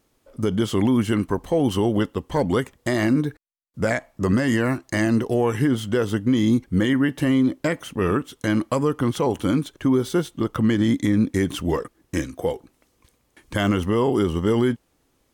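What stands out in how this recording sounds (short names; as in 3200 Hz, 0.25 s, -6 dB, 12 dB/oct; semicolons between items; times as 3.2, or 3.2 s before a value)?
noise floor -67 dBFS; spectral tilt -6.0 dB/oct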